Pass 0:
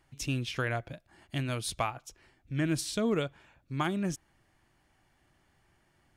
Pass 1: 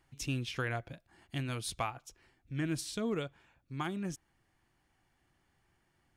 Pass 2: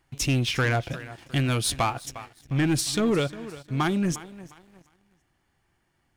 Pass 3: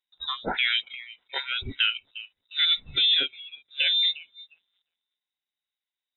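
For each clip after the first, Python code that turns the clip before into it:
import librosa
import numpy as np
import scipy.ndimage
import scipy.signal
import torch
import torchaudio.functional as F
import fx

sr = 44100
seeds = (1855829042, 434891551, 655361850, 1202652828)

y1 = fx.notch(x, sr, hz=610.0, q=12.0)
y1 = fx.rider(y1, sr, range_db=10, speed_s=2.0)
y1 = y1 * 10.0 ** (-3.5 / 20.0)
y2 = fx.echo_feedback(y1, sr, ms=355, feedback_pct=43, wet_db=-18.5)
y2 = fx.leveller(y2, sr, passes=2)
y2 = y2 * 10.0 ** (6.5 / 20.0)
y3 = fx.noise_reduce_blind(y2, sr, reduce_db=24)
y3 = fx.freq_invert(y3, sr, carrier_hz=3800)
y3 = y3 * 10.0 ** (1.5 / 20.0)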